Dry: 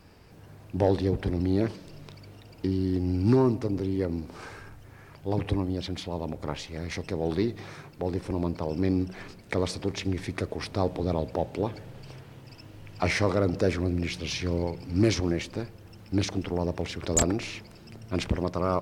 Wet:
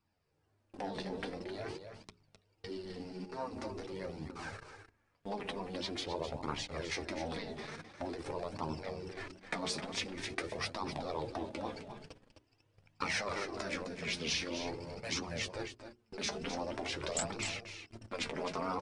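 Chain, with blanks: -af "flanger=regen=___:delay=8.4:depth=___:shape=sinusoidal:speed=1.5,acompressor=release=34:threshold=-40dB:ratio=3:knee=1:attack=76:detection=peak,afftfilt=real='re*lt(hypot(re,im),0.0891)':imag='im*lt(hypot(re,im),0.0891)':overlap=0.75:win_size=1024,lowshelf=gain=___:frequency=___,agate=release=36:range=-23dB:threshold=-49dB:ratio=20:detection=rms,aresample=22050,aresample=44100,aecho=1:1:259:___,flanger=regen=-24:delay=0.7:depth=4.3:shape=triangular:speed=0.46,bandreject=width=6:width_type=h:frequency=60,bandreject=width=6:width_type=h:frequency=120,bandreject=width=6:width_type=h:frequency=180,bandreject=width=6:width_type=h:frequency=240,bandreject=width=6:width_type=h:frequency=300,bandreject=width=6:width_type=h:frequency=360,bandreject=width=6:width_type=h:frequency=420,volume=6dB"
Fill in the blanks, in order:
39, 5.3, -5.5, 170, 0.355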